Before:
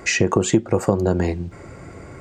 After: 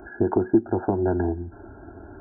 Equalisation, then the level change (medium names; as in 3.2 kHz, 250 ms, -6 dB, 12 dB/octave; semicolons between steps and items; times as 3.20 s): brick-wall FIR low-pass 1.7 kHz; static phaser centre 770 Hz, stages 8; 0.0 dB